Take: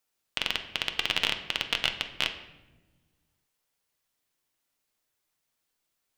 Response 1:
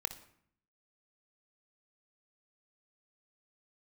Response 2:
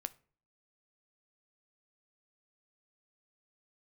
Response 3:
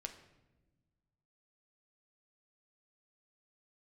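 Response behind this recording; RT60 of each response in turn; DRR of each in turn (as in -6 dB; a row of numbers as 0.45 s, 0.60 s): 3; 0.65 s, 0.45 s, 1.1 s; 10.0 dB, 13.0 dB, 5.0 dB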